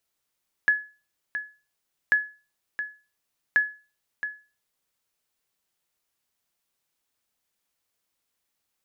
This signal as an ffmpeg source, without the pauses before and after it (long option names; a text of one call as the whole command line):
ffmpeg -f lavfi -i "aevalsrc='0.237*(sin(2*PI*1700*mod(t,1.44))*exp(-6.91*mod(t,1.44)/0.33)+0.299*sin(2*PI*1700*max(mod(t,1.44)-0.67,0))*exp(-6.91*max(mod(t,1.44)-0.67,0)/0.33))':duration=4.32:sample_rate=44100" out.wav